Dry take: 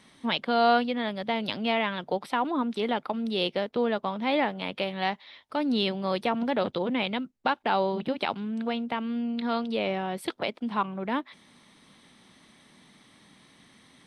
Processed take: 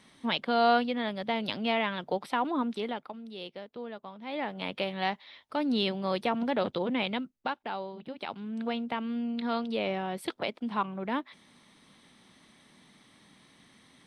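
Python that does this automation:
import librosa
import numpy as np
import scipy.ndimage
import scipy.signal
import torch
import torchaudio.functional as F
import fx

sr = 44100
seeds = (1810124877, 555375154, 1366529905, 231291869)

y = fx.gain(x, sr, db=fx.line((2.68, -2.0), (3.24, -14.0), (4.22, -14.0), (4.62, -2.0), (7.18, -2.0), (7.95, -14.0), (8.64, -2.5)))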